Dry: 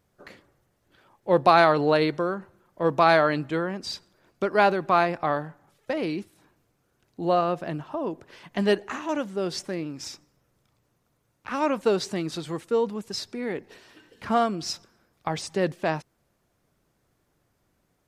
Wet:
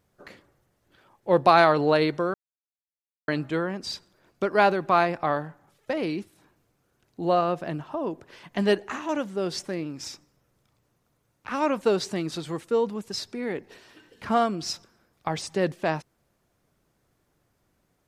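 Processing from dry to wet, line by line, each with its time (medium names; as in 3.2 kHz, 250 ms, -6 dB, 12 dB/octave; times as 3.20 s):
2.34–3.28 s: mute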